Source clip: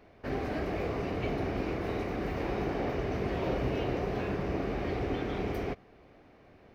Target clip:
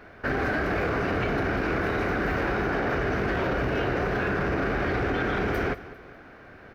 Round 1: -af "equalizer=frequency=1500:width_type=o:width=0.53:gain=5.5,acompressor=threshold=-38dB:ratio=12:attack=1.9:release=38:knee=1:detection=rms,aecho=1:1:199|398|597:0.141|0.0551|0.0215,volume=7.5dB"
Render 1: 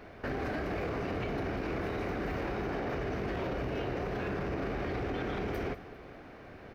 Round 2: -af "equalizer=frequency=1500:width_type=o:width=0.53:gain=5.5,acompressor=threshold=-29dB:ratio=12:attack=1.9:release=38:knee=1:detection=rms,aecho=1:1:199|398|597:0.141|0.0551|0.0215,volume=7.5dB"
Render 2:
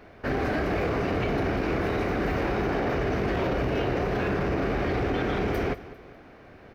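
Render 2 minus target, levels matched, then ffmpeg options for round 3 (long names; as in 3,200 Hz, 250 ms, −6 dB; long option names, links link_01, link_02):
2,000 Hz band −4.0 dB
-af "equalizer=frequency=1500:width_type=o:width=0.53:gain=14,acompressor=threshold=-29dB:ratio=12:attack=1.9:release=38:knee=1:detection=rms,aecho=1:1:199|398|597:0.141|0.0551|0.0215,volume=7.5dB"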